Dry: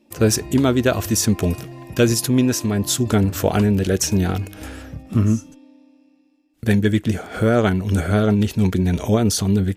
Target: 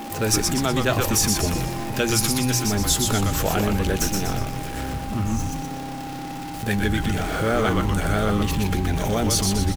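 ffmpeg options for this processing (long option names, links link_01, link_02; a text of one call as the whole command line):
ffmpeg -i in.wav -filter_complex "[0:a]aeval=exprs='val(0)+0.5*0.0376*sgn(val(0))':channel_layout=same,bandreject=frequency=60:width_type=h:width=6,bandreject=frequency=120:width_type=h:width=6,bandreject=frequency=180:width_type=h:width=6,acrossover=split=720[link_01][link_02];[link_01]alimiter=limit=-17dB:level=0:latency=1[link_03];[link_03][link_02]amix=inputs=2:normalize=0,asettb=1/sr,asplit=3[link_04][link_05][link_06];[link_04]atrim=end=4.014[link_07];[link_05]atrim=start=4.01:end=4.77,asetpts=PTS-STARTPTS,afade=type=in:duration=0.004:curve=qsin,afade=type=out:start_time=0.756:duration=0.004:curve=qsin,aeval=exprs='max(val(0),0)':channel_layout=same[link_08];[link_06]atrim=start=4.766[link_09];[link_07][link_08]acrossfade=duration=0.004:curve1=hsin:curve2=qsin[link_10];[link_10][link_09]acrossfade=duration=0.004:curve1=qsin:curve2=hsin,asplit=2[link_11][link_12];[link_12]asplit=6[link_13][link_14][link_15][link_16][link_17][link_18];[link_13]adelay=122,afreqshift=-130,volume=-3.5dB[link_19];[link_14]adelay=244,afreqshift=-260,volume=-9.7dB[link_20];[link_15]adelay=366,afreqshift=-390,volume=-15.9dB[link_21];[link_16]adelay=488,afreqshift=-520,volume=-22.1dB[link_22];[link_17]adelay=610,afreqshift=-650,volume=-28.3dB[link_23];[link_18]adelay=732,afreqshift=-780,volume=-34.5dB[link_24];[link_19][link_20][link_21][link_22][link_23][link_24]amix=inputs=6:normalize=0[link_25];[link_11][link_25]amix=inputs=2:normalize=0,aeval=exprs='val(0)+0.0224*sin(2*PI*800*n/s)':channel_layout=same,volume=-1.5dB" out.wav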